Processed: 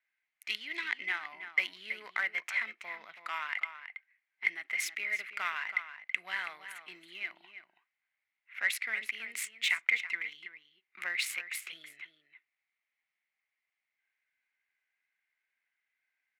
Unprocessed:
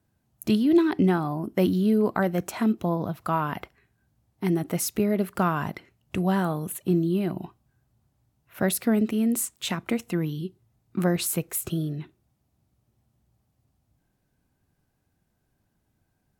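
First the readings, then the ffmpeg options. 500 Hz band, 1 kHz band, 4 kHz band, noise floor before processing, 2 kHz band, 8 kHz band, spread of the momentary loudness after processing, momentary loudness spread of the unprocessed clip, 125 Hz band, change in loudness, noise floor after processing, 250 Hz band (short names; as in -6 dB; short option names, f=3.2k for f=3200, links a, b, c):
-28.5 dB, -12.5 dB, -0.5 dB, -74 dBFS, +6.0 dB, -10.5 dB, 16 LU, 12 LU, under -40 dB, -8.5 dB, under -85 dBFS, under -35 dB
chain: -filter_complex "[0:a]adynamicsmooth=sensitivity=5:basefreq=3.1k,highpass=f=2.1k:t=q:w=8.5,asplit=2[a][b];[b]adelay=326.5,volume=-10dB,highshelf=f=4k:g=-7.35[c];[a][c]amix=inputs=2:normalize=0,volume=-3.5dB"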